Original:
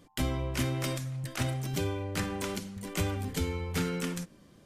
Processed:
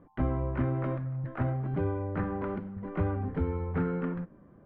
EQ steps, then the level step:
low-pass filter 1,500 Hz 24 dB per octave
+2.0 dB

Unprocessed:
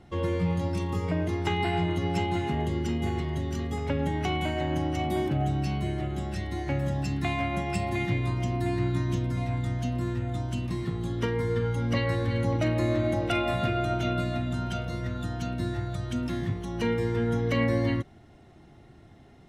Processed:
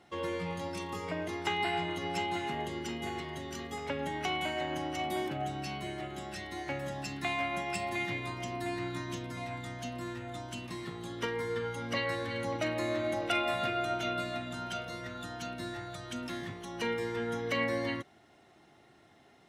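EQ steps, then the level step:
high-pass filter 710 Hz 6 dB per octave
0.0 dB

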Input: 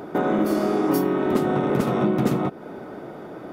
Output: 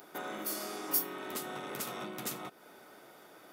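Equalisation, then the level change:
first-order pre-emphasis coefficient 0.97
+2.5 dB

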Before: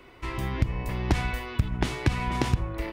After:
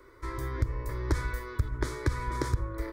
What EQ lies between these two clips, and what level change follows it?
phaser with its sweep stopped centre 750 Hz, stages 6
−1.0 dB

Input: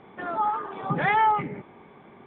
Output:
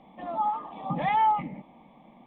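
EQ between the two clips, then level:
low-shelf EQ 78 Hz +7 dB
dynamic equaliser 1,300 Hz, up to +4 dB, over −35 dBFS, Q 1.9
phaser with its sweep stopped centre 400 Hz, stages 6
−1.0 dB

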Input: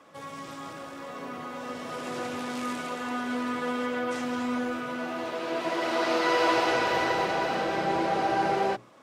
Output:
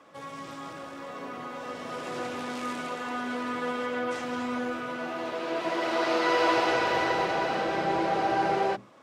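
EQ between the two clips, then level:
high-shelf EQ 8,400 Hz −6.5 dB
mains-hum notches 50/100/150/200/250 Hz
0.0 dB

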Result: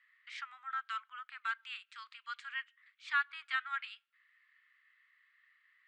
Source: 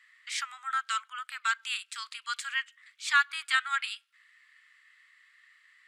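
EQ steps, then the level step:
low-pass filter 2,700 Hz 12 dB per octave
−7.5 dB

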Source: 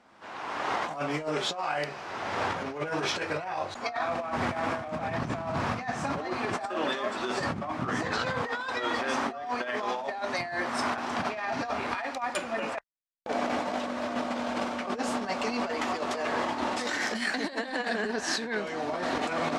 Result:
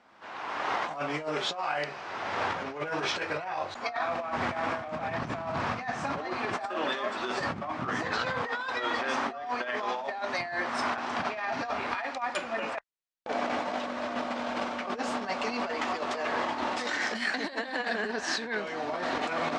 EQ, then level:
high-frequency loss of the air 71 metres
low-shelf EQ 500 Hz −6 dB
+1.5 dB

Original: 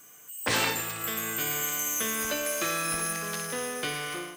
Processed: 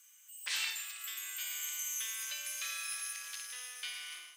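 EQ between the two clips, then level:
resonant band-pass 2,600 Hz, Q 0.98
first difference
+2.0 dB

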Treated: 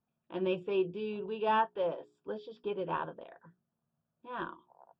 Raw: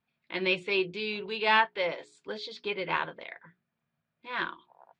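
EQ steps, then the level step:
moving average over 21 samples
0.0 dB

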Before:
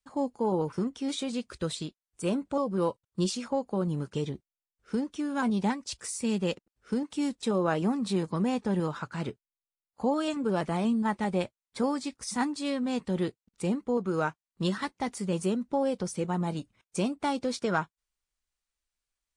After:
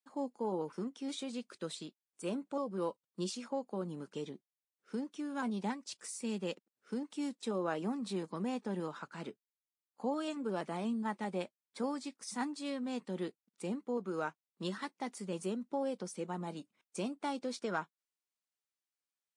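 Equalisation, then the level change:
high-pass filter 190 Hz 24 dB per octave
−8.0 dB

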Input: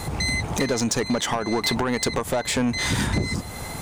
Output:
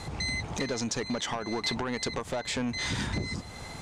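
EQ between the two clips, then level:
high-frequency loss of the air 140 metres
parametric band 13,000 Hz +15 dB 2.1 octaves
−8.5 dB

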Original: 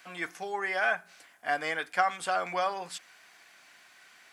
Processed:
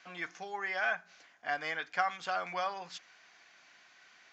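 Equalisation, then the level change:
Butterworth low-pass 7,000 Hz 96 dB per octave
dynamic equaliser 390 Hz, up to −5 dB, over −44 dBFS, Q 0.88
−3.5 dB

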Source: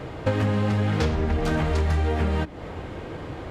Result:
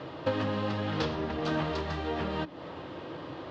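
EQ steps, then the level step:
loudspeaker in its box 210–4,900 Hz, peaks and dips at 220 Hz −8 dB, 430 Hz −8 dB, 750 Hz −6 dB, 1,500 Hz −5 dB, 2,200 Hz −9 dB
0.0 dB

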